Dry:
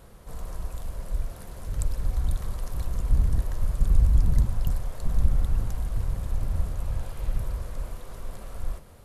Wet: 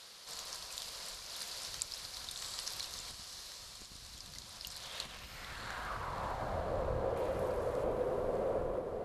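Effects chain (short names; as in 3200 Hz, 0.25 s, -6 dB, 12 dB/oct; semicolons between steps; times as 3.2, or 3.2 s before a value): 3.12–4.01 gate -16 dBFS, range -13 dB; 7.16–7.84 tilt +3 dB/oct; compressor, threshold -26 dBFS, peak gain reduction 13.5 dB; band-pass sweep 4600 Hz -> 480 Hz, 4.7–6.91; diffused feedback echo 0.679 s, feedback 47%, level -6.5 dB; gain +17 dB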